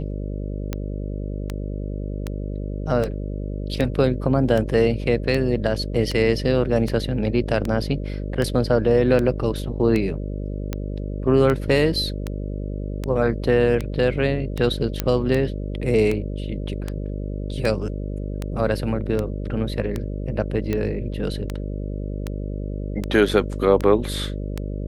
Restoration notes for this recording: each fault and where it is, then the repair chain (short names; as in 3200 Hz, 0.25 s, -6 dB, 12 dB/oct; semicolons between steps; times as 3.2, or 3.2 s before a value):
buzz 50 Hz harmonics 12 -28 dBFS
tick 78 rpm -12 dBFS
15 pop -6 dBFS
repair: de-click; de-hum 50 Hz, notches 12